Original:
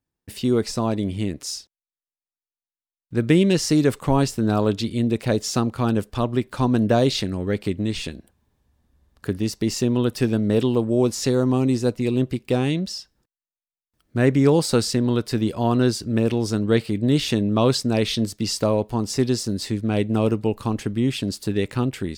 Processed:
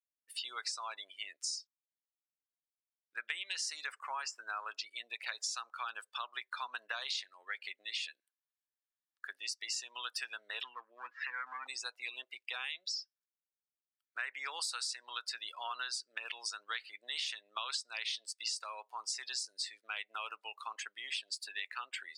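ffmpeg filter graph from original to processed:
-filter_complex "[0:a]asettb=1/sr,asplit=3[a][b][c];[a]atrim=end=3.924[d];[b]atrim=start=3.92:end=4.96,asetpts=PTS-STARTPTS,afade=t=in:d=0.004:c=qsin,afade=t=out:st=1.036:d=0.004:c=qsin,highpass=160,acrossover=split=7300[e][f];[f]acompressor=threshold=-49dB:ratio=4:attack=1:release=60[g];[e][g]amix=inputs=2:normalize=0,equalizer=f=3.7k:w=2.6:g=-9.5[h];[c]atrim=start=4.956[i];[d][h]acrossfade=d=0.004:c1=hsin:c2=qsin[j];[j][i]acrossfade=d=0.004:c1=qsin:c2=hsin,asettb=1/sr,asplit=3[k][l][m];[k]atrim=end=10.644[n];[l]atrim=start=10.64:end=11.67,asetpts=PTS-STARTPTS,afade=t=in:d=0.004:c=qsin,afade=t=out:st=1.026:d=0.004:c=qsin,highpass=240,equalizer=f=260:t=q:w=4:g=5,equalizer=f=390:t=q:w=4:g=-8,equalizer=f=600:t=q:w=4:g=-10,equalizer=f=880:t=q:w=4:g=-5,equalizer=f=1.6k:t=q:w=4:g=9,lowpass=f=2.4k:w=0.5412,lowpass=f=2.4k:w=1.3066,acompressor=mode=upward:threshold=-26dB:ratio=2.5:attack=3.2:release=140:knee=2.83:detection=peak,volume=17dB,asoftclip=hard,volume=-17dB[o];[m]atrim=start=11.666[p];[n][o]acrossfade=d=0.004:c1=hsin:c2=qsin[q];[q][p]acrossfade=d=0.004:c1=qsin:c2=hsin,afftdn=nr=25:nf=-38,highpass=f=1.3k:w=0.5412,highpass=f=1.3k:w=1.3066,acompressor=threshold=-37dB:ratio=6,volume=1dB"

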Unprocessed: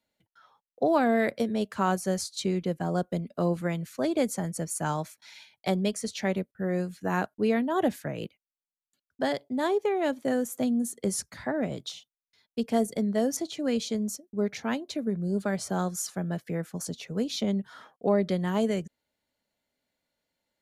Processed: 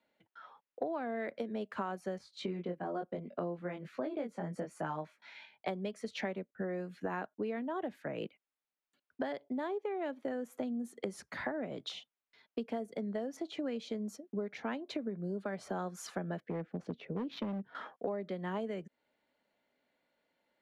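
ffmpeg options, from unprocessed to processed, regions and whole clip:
-filter_complex "[0:a]asettb=1/sr,asplit=3[a][b][c];[a]atrim=end=2.184[d];[b]atrim=start=2.18:end=5.68,asetpts=PTS-STARTPTS,afade=t=in:d=0.004:c=qsin,afade=t=out:st=3.496:d=0.004:c=qsin,lowpass=f=3k:p=1,flanger=delay=19:depth=4.1:speed=1.1[e];[c]atrim=start=5.676[f];[d][e]acrossfade=d=0.004:c1=hsin:c2=qsin[g];[g][f]acrossfade=d=0.004:c1=qsin:c2=hsin,asettb=1/sr,asplit=3[h][i][j];[h]atrim=end=16.404[k];[i]atrim=start=16.4:end=17.75,asetpts=PTS-STARTPTS,afade=t=in:d=0.004:c=qsin,afade=t=out:st=1.346:d=0.004:c=qsin,equalizer=f=1.1k:t=o:w=1.1:g=-12.5,adynamicsmooth=sensitivity=3:basefreq=1.6k,asoftclip=type=hard:threshold=-27.5dB[l];[j]atrim=start=17.746[m];[k][l]acrossfade=d=0.004:c1=hsin:c2=qsin[n];[n][m]acrossfade=d=0.004:c1=qsin:c2=hsin,acrossover=split=200 3300:gain=0.2 1 0.126[o][p][q];[o][p][q]amix=inputs=3:normalize=0,acompressor=threshold=-40dB:ratio=10,volume=5.5dB"

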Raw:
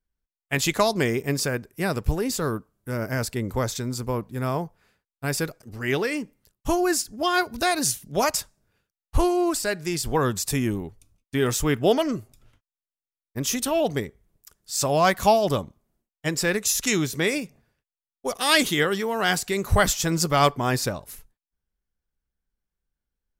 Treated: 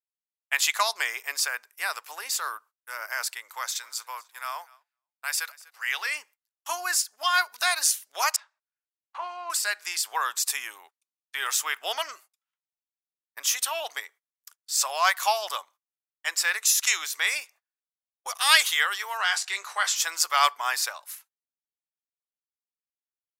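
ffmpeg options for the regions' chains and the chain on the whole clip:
-filter_complex "[0:a]asettb=1/sr,asplit=3[a][b][c];[a]atrim=end=3.324[d];[b]atrim=start=3.32:end=6.06,asetpts=PTS-STARTPTS,afade=t=in:d=0.004:c=qsin,afade=t=out:st=2.736:d=0.004:c=qsin,highpass=f=850:p=1,aecho=1:1:246|492:0.075|0.0262,atrim=end_sample=120834[e];[c]atrim=start=6.056[f];[d][e]acrossfade=d=0.004:c1=hsin:c2=qsin[g];[g][f]acrossfade=d=0.004:c1=qsin:c2=hsin,asettb=1/sr,asplit=3[h][i][j];[h]atrim=end=8.364[k];[i]atrim=start=8.36:end=9.5,asetpts=PTS-STARTPTS,afade=t=in:d=0.004:c=qsin,afade=t=out:st=1.136:d=0.004:c=qsin,deesser=0.85,highpass=490,lowpass=2.3k,asplit=2[l][m];[m]adelay=29,volume=-14dB[n];[l][n]amix=inputs=2:normalize=0,atrim=end_sample=50274[o];[j]atrim=start=9.496[p];[k][o]acrossfade=d=0.004:c1=hsin:c2=qsin[q];[q][p]acrossfade=d=0.004:c1=qsin:c2=hsin,asettb=1/sr,asplit=3[r][s][t];[r]atrim=end=19.174[u];[s]atrim=start=19.17:end=19.96,asetpts=PTS-STARTPTS,afade=t=in:d=0.004:c=qsin,afade=t=out:st=0.786:d=0.004:c=qsin,asplit=2[v][w];[w]adelay=20,volume=-10dB[x];[v][x]amix=inputs=2:normalize=0,atrim=end_sample=34839,acompressor=threshold=-19dB:ratio=3:attack=3.2:release=140:knee=1:detection=peak,highpass=170,lowpass=7.7k[y];[t]atrim=start=19.956[z];[u][y]acrossfade=d=0.004:c1=hsin:c2=qsin[aa];[aa][z]acrossfade=d=0.004:c1=qsin:c2=hsin,highpass=f=950:w=0.5412,highpass=f=950:w=1.3066,agate=range=-26dB:threshold=-54dB:ratio=16:detection=peak,volume=2dB"

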